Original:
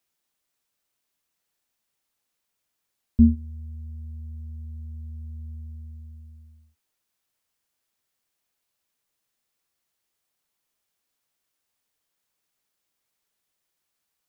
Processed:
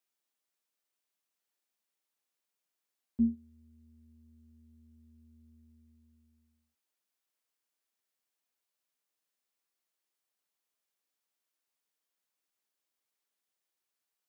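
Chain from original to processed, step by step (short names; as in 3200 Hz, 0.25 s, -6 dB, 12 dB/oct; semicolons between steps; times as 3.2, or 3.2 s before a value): HPF 220 Hz 12 dB/oct; gain -8 dB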